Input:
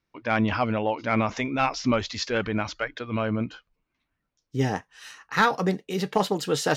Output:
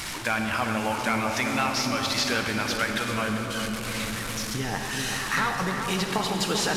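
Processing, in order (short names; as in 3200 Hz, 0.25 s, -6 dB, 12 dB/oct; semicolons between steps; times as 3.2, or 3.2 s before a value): delta modulation 64 kbps, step -35.5 dBFS; bell 470 Hz -8.5 dB 1.7 oct; in parallel at -11 dB: soft clip -29.5 dBFS, distortion -8 dB; on the sum: compressor, threshold -31 dBFS, peak gain reduction 11.5 dB; low shelf 270 Hz -9 dB; darkening echo 0.393 s, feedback 75%, low-pass 1000 Hz, level -5 dB; on a send at -4 dB: reverb RT60 3.1 s, pre-delay 43 ms; on the sum: gain +8.5 dB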